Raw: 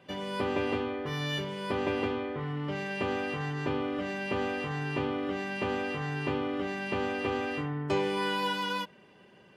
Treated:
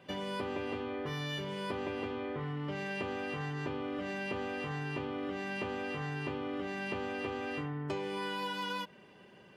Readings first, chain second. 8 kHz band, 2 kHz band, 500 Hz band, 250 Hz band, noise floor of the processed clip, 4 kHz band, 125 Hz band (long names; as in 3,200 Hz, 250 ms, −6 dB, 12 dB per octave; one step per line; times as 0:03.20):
−5.0 dB, −5.0 dB, −6.0 dB, −5.5 dB, −58 dBFS, −5.0 dB, −4.5 dB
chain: downward compressor, threshold −34 dBFS, peak gain reduction 9.5 dB